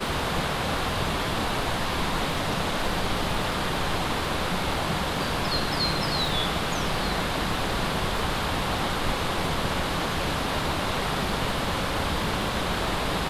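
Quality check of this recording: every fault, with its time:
surface crackle 15 per second −31 dBFS

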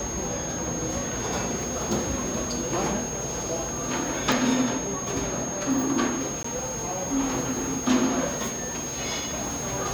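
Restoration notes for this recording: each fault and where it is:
whistle 6,500 Hz −32 dBFS
0:04.32: click
0:06.43–0:06.44: drop-out 14 ms

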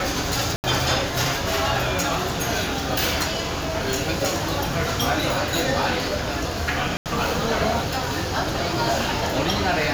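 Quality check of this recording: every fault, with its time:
0:00.56–0:00.64: drop-out 79 ms
0:06.97–0:07.06: drop-out 88 ms

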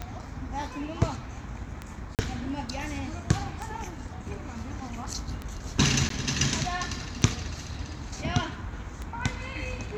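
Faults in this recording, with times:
scratch tick 33 1/3 rpm −20 dBFS
0:02.15–0:02.19: drop-out 38 ms
0:06.09–0:06.10: drop-out 13 ms

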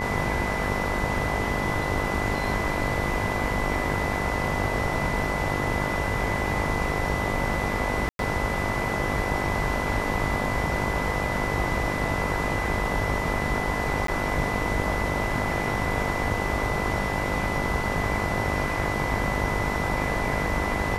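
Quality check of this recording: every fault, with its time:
mains buzz 50 Hz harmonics 21 −31 dBFS
whistle 2,000 Hz −31 dBFS
0:08.09–0:08.19: drop-out 102 ms
0:14.07–0:14.08: drop-out 13 ms

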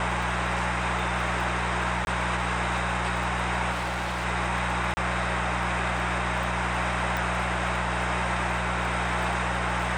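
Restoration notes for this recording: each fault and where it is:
surface crackle 17 per second −32 dBFS
mains hum 60 Hz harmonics 3 −32 dBFS
0:02.05–0:02.07: drop-out 21 ms
0:03.71–0:04.26: clipping −26 dBFS
0:04.94–0:04.97: drop-out 30 ms
0:07.17: click

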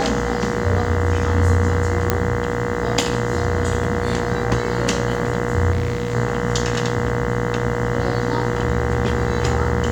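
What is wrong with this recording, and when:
mains buzz 60 Hz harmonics 34 −25 dBFS
whistle 480 Hz −26 dBFS
0:02.10: click −1 dBFS
0:05.71–0:06.15: clipping −16.5 dBFS

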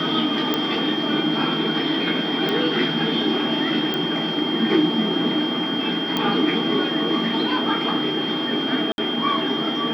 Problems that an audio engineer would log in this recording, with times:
whistle 3,200 Hz −26 dBFS
0:00.54: click −7 dBFS
0:02.49: click −12 dBFS
0:03.94: click −11 dBFS
0:06.17: click −8 dBFS
0:08.92–0:08.98: drop-out 61 ms

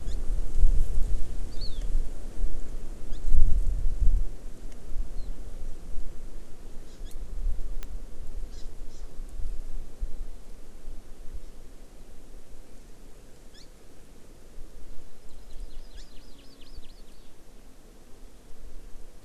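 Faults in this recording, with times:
0:07.83: click −19 dBFS

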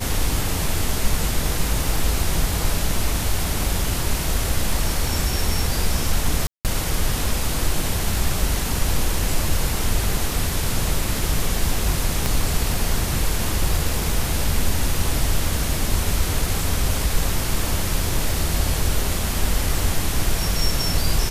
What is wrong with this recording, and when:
0:06.47–0:06.65: drop-out 178 ms
0:12.26: click

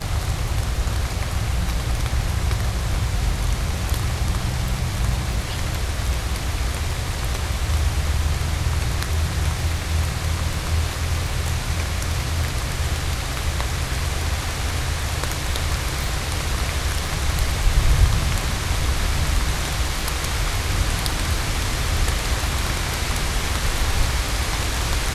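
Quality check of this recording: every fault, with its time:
surface crackle 12 per second −29 dBFS
0:16.04: click

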